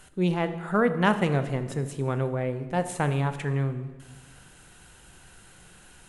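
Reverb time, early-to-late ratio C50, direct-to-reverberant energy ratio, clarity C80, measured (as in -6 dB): 1.3 s, 11.5 dB, 9.5 dB, 13.0 dB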